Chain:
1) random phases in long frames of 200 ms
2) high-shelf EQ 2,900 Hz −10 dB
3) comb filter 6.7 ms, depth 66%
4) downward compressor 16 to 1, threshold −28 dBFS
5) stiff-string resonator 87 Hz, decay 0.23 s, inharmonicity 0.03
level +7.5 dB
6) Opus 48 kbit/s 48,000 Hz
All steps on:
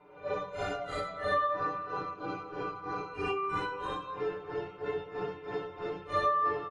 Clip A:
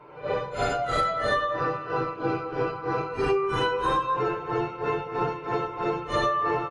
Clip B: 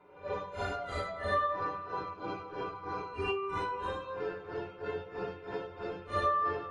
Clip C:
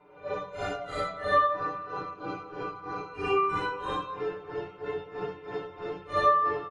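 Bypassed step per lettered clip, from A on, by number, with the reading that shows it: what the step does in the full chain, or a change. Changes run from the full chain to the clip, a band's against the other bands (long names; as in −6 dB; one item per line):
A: 5, 125 Hz band +3.5 dB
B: 3, 125 Hz band +3.0 dB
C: 4, change in crest factor +2.0 dB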